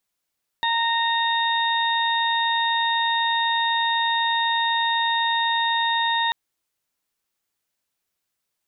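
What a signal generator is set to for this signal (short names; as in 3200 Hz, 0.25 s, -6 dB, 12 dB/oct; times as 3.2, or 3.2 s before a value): steady additive tone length 5.69 s, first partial 924 Hz, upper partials -3/-15.5/-2.5 dB, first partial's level -22 dB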